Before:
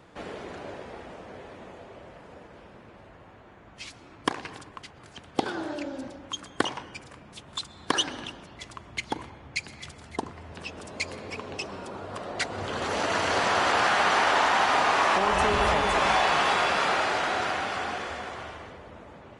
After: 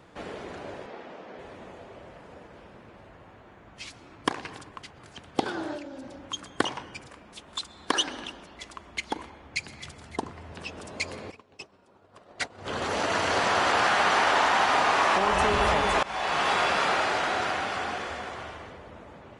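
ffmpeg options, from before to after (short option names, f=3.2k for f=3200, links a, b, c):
-filter_complex "[0:a]asettb=1/sr,asplit=3[a][b][c];[a]atrim=end=0.864[d];[b]atrim=start=0.86:end=1.39,asetpts=PTS-STARTPTS,afade=t=in:d=0.004:c=qsin,afade=t=out:st=0.526:d=0.004:c=qsin,acrossover=split=160 6400:gain=0.1 1 0.0631[e][f][g];[e][f][g]amix=inputs=3:normalize=0[h];[c]atrim=start=1.386[i];[d][h]acrossfade=d=0.004:c1=hsin:c2=qsin[j];[j][i]acrossfade=d=0.004:c1=qsin:c2=hsin,asettb=1/sr,asplit=3[k][l][m];[k]atrim=end=5.774[n];[l]atrim=start=5.77:end=6.2,asetpts=PTS-STARTPTS,afade=t=in:d=0.004:c=qsin,afade=t=out:st=0.426:d=0.004:c=qsin,acompressor=threshold=-38dB:ratio=3:attack=3.2:release=140:knee=1:detection=peak[o];[m]atrim=start=6.196[p];[n][o]acrossfade=d=0.004:c1=hsin:c2=qsin[q];[q][p]acrossfade=d=0.004:c1=qsin:c2=hsin,asettb=1/sr,asplit=3[r][s][t];[r]atrim=end=7.084[u];[s]atrim=start=7.08:end=9.52,asetpts=PTS-STARTPTS,afade=t=in:d=0.004:c=qsin,afade=t=out:st=2.436:d=0.004:c=qsin,equalizer=f=120:w=2.2:g=-14[v];[t]atrim=start=9.516[w];[u][v]acrossfade=d=0.004:c1=hsin:c2=qsin[x];[x][w]acrossfade=d=0.004:c1=qsin:c2=hsin,asplit=3[y][z][aa];[y]afade=t=out:st=11.3:d=0.02[ab];[z]agate=range=-33dB:threshold=-26dB:ratio=3:release=100:detection=peak,afade=t=in:st=11.3:d=0.02,afade=t=out:st=12.65:d=0.02[ac];[aa]afade=t=in:st=12.65:d=0.02[ad];[ab][ac][ad]amix=inputs=3:normalize=0,asplit=2[ae][af];[ae]atrim=end=16.03,asetpts=PTS-STARTPTS,afade=t=out:st=16.026:d=0.004:c=hsin:silence=0.0841395[ag];[af]atrim=start=16.03,asetpts=PTS-STARTPTS,afade=t=in:d=0.68:c=qsin:silence=0.0841395[ah];[ag][ah]concat=n=2:v=0:a=1"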